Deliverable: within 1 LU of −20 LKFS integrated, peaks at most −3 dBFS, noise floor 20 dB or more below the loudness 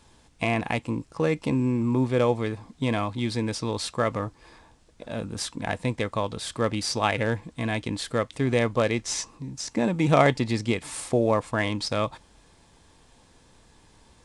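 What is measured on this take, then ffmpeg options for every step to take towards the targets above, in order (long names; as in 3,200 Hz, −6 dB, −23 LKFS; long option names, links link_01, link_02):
integrated loudness −26.5 LKFS; sample peak −5.0 dBFS; target loudness −20.0 LKFS
→ -af "volume=6.5dB,alimiter=limit=-3dB:level=0:latency=1"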